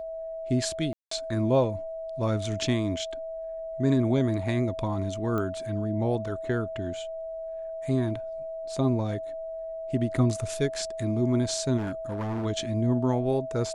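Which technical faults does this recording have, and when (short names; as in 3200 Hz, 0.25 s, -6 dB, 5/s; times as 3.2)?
tone 650 Hz -33 dBFS
0.93–1.11 gap 0.184 s
5.38 pop -19 dBFS
11.77–12.46 clipped -27.5 dBFS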